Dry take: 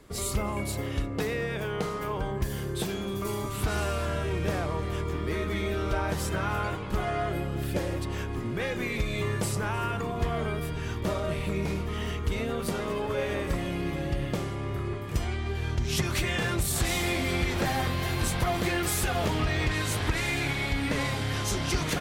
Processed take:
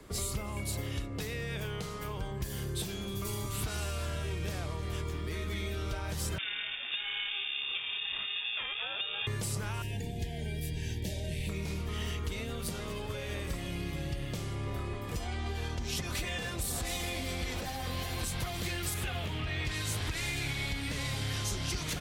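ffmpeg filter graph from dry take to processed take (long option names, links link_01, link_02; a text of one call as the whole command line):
ffmpeg -i in.wav -filter_complex "[0:a]asettb=1/sr,asplit=3[link_01][link_02][link_03];[link_01]atrim=end=6.384[link_04];[link_02]atrim=start=6.38:end=9.27,asetpts=PTS-STARTPTS,afade=type=in:duration=0.004:curve=qsin,afade=type=out:start_time=2.886:duration=0.004:curve=qsin,lowpass=frequency=2800:width_type=q:width=0.5098,lowpass=frequency=2800:width_type=q:width=0.6013,lowpass=frequency=2800:width_type=q:width=0.9,lowpass=frequency=2800:width_type=q:width=2.563,afreqshift=-3300,aeval=exprs='val(0)*sin(2*PI*400*n/s)':channel_layout=same[link_05];[link_03]atrim=start=9.266[link_06];[link_04][link_05]acrossfade=duration=0.004:curve1=hsin:curve2=qsin[link_07];[link_07][link_06]acrossfade=duration=0.004:curve1=qsin:curve2=hsin,asettb=1/sr,asplit=3[link_08][link_09][link_10];[link_08]atrim=end=9.824[link_11];[link_09]atrim=start=9.82:end=11.49,asetpts=PTS-STARTPTS,afade=type=in:duration=0.004:curve=qsin,afade=type=out:start_time=1.666:duration=0.004:curve=qsin,asuperstop=centerf=1200:order=20:qfactor=1.9,equalizer=frequency=810:width_type=o:width=2.5:gain=-8[link_12];[link_10]atrim=start=11.486[link_13];[link_11][link_12]acrossfade=duration=0.004:curve1=hsin:curve2=qsin[link_14];[link_14][link_13]acrossfade=duration=0.004:curve1=qsin:curve2=hsin,asettb=1/sr,asplit=3[link_15][link_16][link_17];[link_15]atrim=end=14.674[link_18];[link_16]atrim=start=14.67:end=18.25,asetpts=PTS-STARTPTS,afade=type=in:duration=0.004:curve=qsin,afade=type=out:start_time=3.576:duration=0.004:curve=qsin,equalizer=frequency=610:width_type=o:width=2.3:gain=7.5,aecho=1:1:4:0.44,atrim=end_sample=157878[link_19];[link_17]atrim=start=18.246[link_20];[link_18][link_19]acrossfade=duration=0.004:curve1=hsin:curve2=qsin[link_21];[link_21][link_20]acrossfade=duration=0.004:curve1=qsin:curve2=hsin,asettb=1/sr,asplit=3[link_22][link_23][link_24];[link_22]atrim=end=18.944[link_25];[link_23]atrim=start=18.94:end=19.65,asetpts=PTS-STARTPTS,afade=type=in:duration=0.004:curve=qsin,afade=type=out:start_time=0.706:duration=0.004:curve=qsin,highpass=52,highshelf=frequency=3900:width_type=q:width=1.5:gain=-7.5[link_26];[link_24]atrim=start=19.646[link_27];[link_25][link_26]acrossfade=duration=0.004:curve1=hsin:curve2=qsin[link_28];[link_28][link_27]acrossfade=duration=0.004:curve1=qsin:curve2=hsin,alimiter=limit=-21dB:level=0:latency=1:release=356,acrossover=split=140|2600[link_29][link_30][link_31];[link_29]acompressor=threshold=-36dB:ratio=4[link_32];[link_30]acompressor=threshold=-43dB:ratio=4[link_33];[link_31]acompressor=threshold=-36dB:ratio=4[link_34];[link_32][link_33][link_34]amix=inputs=3:normalize=0,volume=1.5dB" out.wav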